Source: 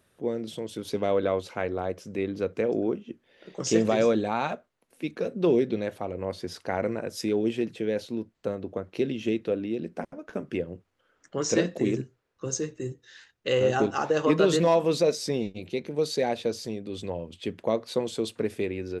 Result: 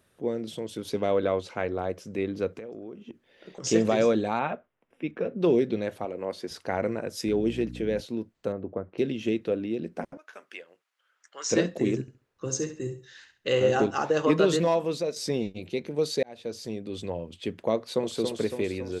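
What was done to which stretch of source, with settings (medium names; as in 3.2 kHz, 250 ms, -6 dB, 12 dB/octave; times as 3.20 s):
1.37–1.78 s: low-pass 9.3 kHz
2.48–3.64 s: compression 10:1, threshold -36 dBFS
4.39–5.41 s: Savitzky-Golay filter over 25 samples
6.05–6.51 s: high-pass 220 Hz
7.26–8.00 s: mains buzz 60 Hz, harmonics 5, -40 dBFS -1 dB/octave
8.52–8.98 s: low-pass 1.5 kHz
10.17–11.51 s: high-pass 1.2 kHz
12.01–13.84 s: feedback delay 68 ms, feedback 24%, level -10 dB
14.38–15.16 s: fade out, to -8.5 dB
16.23–16.76 s: fade in
17.75–18.18 s: echo throw 280 ms, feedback 65%, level -5.5 dB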